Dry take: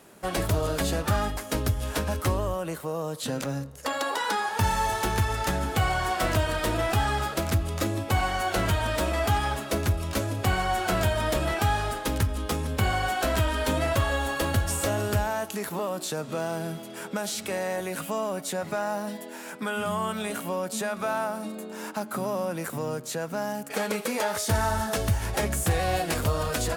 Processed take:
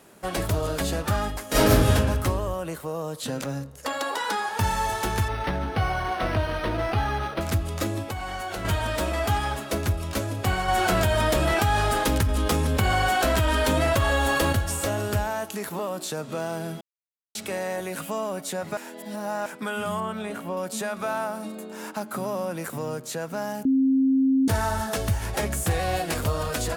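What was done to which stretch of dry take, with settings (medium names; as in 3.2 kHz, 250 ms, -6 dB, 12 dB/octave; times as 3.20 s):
1.48–1.93 s: reverb throw, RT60 1.2 s, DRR -11.5 dB
5.28–7.41 s: decimation joined by straight lines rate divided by 6×
8.02–8.65 s: compression, threshold -28 dBFS
10.68–14.53 s: level flattener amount 70%
16.81–17.35 s: mute
18.77–19.46 s: reverse
20.00–20.57 s: treble shelf 3.4 kHz -11.5 dB
23.65–24.48 s: bleep 266 Hz -17 dBFS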